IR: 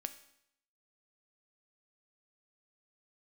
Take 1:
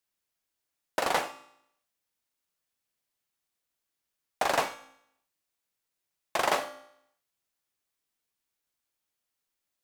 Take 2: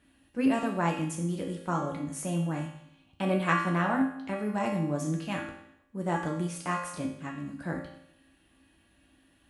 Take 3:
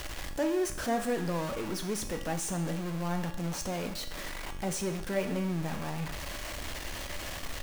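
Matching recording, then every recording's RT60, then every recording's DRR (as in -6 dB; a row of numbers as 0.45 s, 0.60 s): 1; 0.75 s, 0.75 s, 0.75 s; 9.0 dB, -2.5 dB, 4.0 dB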